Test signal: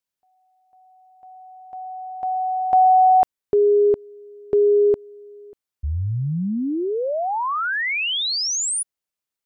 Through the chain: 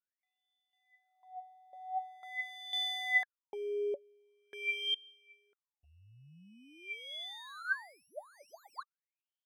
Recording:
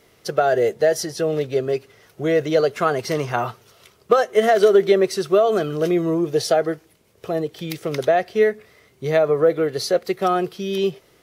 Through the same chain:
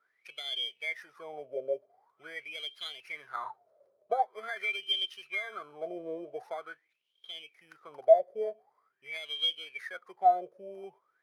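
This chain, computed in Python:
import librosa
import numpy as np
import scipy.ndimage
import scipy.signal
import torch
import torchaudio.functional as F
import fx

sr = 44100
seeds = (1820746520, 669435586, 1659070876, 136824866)

y = fx.bit_reversed(x, sr, seeds[0], block=16)
y = fx.wah_lfo(y, sr, hz=0.45, low_hz=560.0, high_hz=3200.0, q=19.0)
y = F.gain(torch.from_numpy(y), 4.0).numpy()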